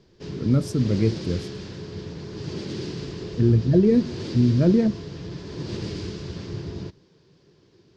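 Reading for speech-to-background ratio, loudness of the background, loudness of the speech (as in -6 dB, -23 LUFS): 12.5 dB, -34.0 LUFS, -21.5 LUFS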